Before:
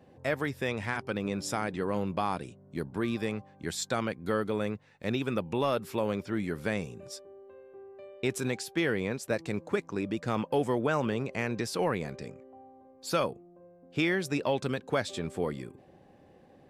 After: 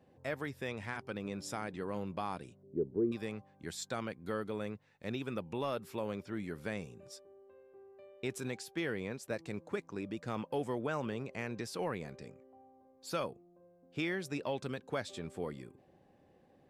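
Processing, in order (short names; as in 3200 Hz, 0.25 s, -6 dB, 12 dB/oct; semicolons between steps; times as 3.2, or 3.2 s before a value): 2.63–3.12 synth low-pass 410 Hz, resonance Q 4.9; gain -8 dB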